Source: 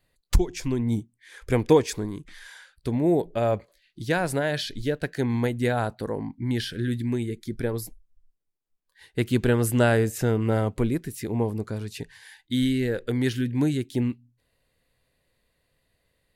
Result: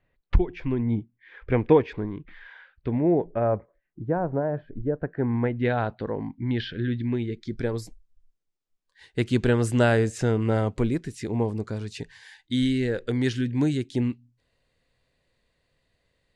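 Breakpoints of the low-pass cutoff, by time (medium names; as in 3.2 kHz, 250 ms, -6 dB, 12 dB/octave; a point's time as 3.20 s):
low-pass 24 dB/octave
2.91 s 2.7 kHz
4.04 s 1.1 kHz
4.86 s 1.1 kHz
5.46 s 2.1 kHz
5.70 s 3.6 kHz
7.10 s 3.6 kHz
7.77 s 8 kHz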